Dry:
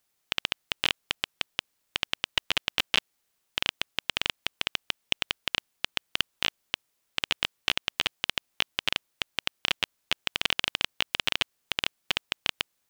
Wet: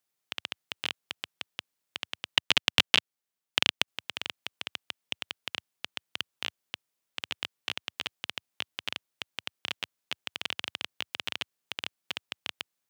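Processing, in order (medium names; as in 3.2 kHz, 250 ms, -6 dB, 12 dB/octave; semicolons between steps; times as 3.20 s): high-pass 91 Hz 24 dB/octave; 2.36–3.88 s: transient shaper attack +12 dB, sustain -6 dB; trim -7.5 dB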